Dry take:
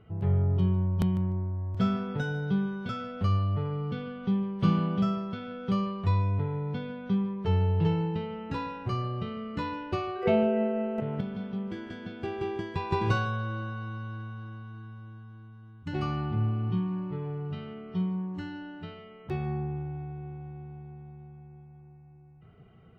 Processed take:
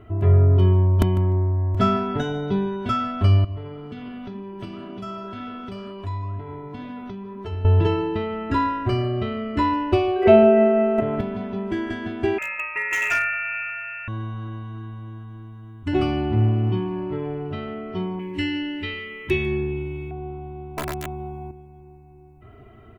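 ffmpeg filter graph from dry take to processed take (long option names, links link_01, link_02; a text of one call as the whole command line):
ffmpeg -i in.wav -filter_complex "[0:a]asettb=1/sr,asplit=3[link_01][link_02][link_03];[link_01]atrim=end=3.444[link_04];[link_02]atrim=start=3.44:end=7.65,asetpts=PTS-STARTPTS,afade=type=in:duration=0.004:curve=qsin,afade=type=out:start_time=4.206:duration=0.004:curve=qsin,highshelf=frequency=4400:gain=8,acompressor=threshold=-35dB:ratio=3:attack=3.2:release=140:knee=1:detection=peak,flanger=delay=5:depth=6.7:regen=-84:speed=2:shape=sinusoidal[link_05];[link_03]atrim=start=7.646[link_06];[link_04][link_05]acrossfade=duration=0.004:curve1=hsin:curve2=qsin[link_07];[link_07][link_06]acrossfade=duration=0.004:curve1=qsin:curve2=hsin,asettb=1/sr,asplit=3[link_08][link_09][link_10];[link_08]atrim=end=12.384[link_11];[link_09]atrim=start=12.38:end=14.08,asetpts=PTS-STARTPTS,afade=type=in:duration=0.004:curve=qsin,afade=type=out:start_time=1.696:duration=0.004:curve=qsin,highpass=frequency=240:width=0.5412,highpass=frequency=240:width=1.3066,lowpass=frequency=2500:width_type=q:width=0.5098,lowpass=frequency=2500:width_type=q:width=0.6013,lowpass=frequency=2500:width_type=q:width=0.9,lowpass=frequency=2500:width_type=q:width=2.563,afreqshift=-2900,asoftclip=type=hard:threshold=-26dB[link_12];[link_10]atrim=start=14.076[link_13];[link_11][link_12]acrossfade=duration=0.004:curve1=hsin:curve2=qsin[link_14];[link_14][link_13]acrossfade=duration=0.004:curve1=qsin:curve2=hsin,asettb=1/sr,asplit=3[link_15][link_16][link_17];[link_15]atrim=end=18.194[link_18];[link_16]atrim=start=18.19:end=20.11,asetpts=PTS-STARTPTS,afade=type=in:duration=0.004:curve=qsin,afade=type=out:start_time=1.916:duration=0.004:curve=qsin,asuperstop=centerf=680:order=8:qfactor=3.5,highshelf=frequency=1700:width_type=q:width=3:gain=7.5[link_19];[link_17]atrim=start=20.106[link_20];[link_18][link_19]acrossfade=duration=0.004:curve1=hsin:curve2=qsin[link_21];[link_21][link_20]acrossfade=duration=0.004:curve1=qsin:curve2=hsin,asettb=1/sr,asplit=3[link_22][link_23][link_24];[link_22]atrim=end=20.774[link_25];[link_23]atrim=start=20.77:end=21.51,asetpts=PTS-STARTPTS,afade=type=in:duration=0.004:curve=qsin,afade=type=out:start_time=0.736:duration=0.004:curve=qsin,equalizer=frequency=910:width_type=o:width=1.7:gain=4.5,acontrast=89,aeval=exprs='(mod(31.6*val(0)+1,2)-1)/31.6':channel_layout=same[link_26];[link_24]atrim=start=21.506[link_27];[link_25][link_26]acrossfade=duration=0.004:curve1=hsin:curve2=qsin[link_28];[link_28][link_27]acrossfade=duration=0.004:curve1=qsin:curve2=hsin,equalizer=frequency=4700:width=1.2:gain=-6,aecho=1:1:3:0.89,volume=9dB" out.wav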